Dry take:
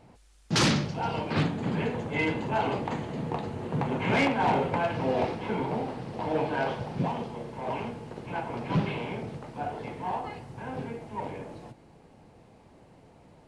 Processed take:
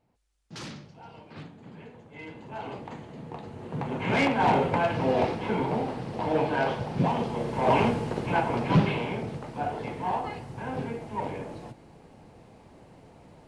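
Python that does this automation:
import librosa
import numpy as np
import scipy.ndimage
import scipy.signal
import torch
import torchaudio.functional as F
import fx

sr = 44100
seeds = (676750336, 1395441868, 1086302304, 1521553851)

y = fx.gain(x, sr, db=fx.line((2.11, -17.0), (2.72, -8.5), (3.27, -8.5), (4.44, 2.5), (6.89, 2.5), (7.84, 12.0), (9.1, 3.0)))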